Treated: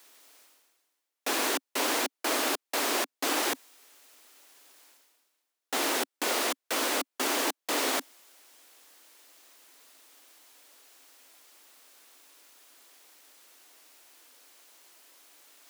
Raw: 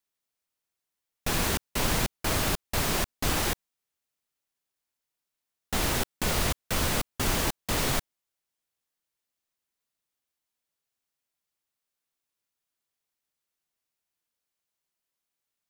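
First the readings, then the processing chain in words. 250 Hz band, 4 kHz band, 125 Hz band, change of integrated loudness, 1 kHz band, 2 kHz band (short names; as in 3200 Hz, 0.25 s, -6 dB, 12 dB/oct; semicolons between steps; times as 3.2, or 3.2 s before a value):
-2.5 dB, +0.5 dB, under -30 dB, -0.5 dB, +1.0 dB, +0.5 dB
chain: elliptic high-pass 270 Hz, stop band 50 dB; high shelf 12000 Hz -3 dB; reverse; upward compressor, threshold -35 dBFS; reverse; gain +1.5 dB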